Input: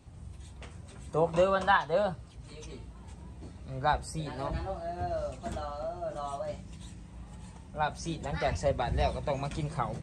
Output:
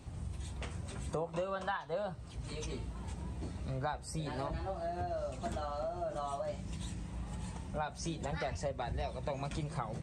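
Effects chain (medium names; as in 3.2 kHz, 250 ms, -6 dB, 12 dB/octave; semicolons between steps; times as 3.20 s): compression 6:1, threshold -40 dBFS, peak gain reduction 19.5 dB; trim +5 dB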